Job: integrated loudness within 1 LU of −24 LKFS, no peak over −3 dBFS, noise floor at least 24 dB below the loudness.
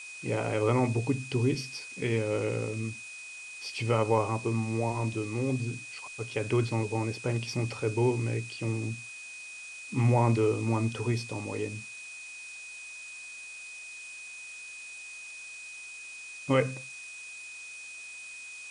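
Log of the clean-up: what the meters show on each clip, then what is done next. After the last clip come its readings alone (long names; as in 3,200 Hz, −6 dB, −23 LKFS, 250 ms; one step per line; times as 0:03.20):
interfering tone 2,500 Hz; level of the tone −42 dBFS; background noise floor −44 dBFS; target noise floor −56 dBFS; integrated loudness −32.0 LKFS; sample peak −11.0 dBFS; target loudness −24.0 LKFS
→ notch filter 2,500 Hz, Q 30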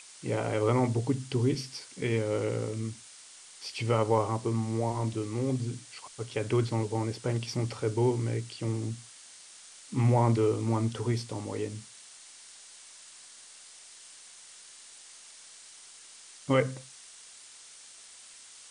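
interfering tone none found; background noise floor −52 dBFS; target noise floor −54 dBFS
→ broadband denoise 6 dB, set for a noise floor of −52 dBFS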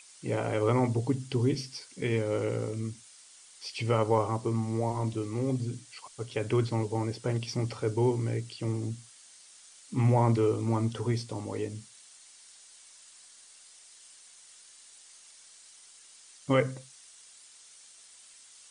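background noise floor −55 dBFS; integrated loudness −30.5 LKFS; sample peak −11.5 dBFS; target loudness −24.0 LKFS
→ level +6.5 dB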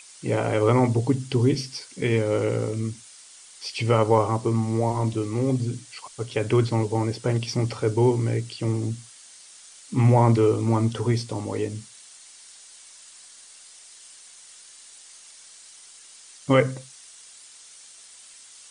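integrated loudness −24.0 LKFS; sample peak −5.0 dBFS; background noise floor −48 dBFS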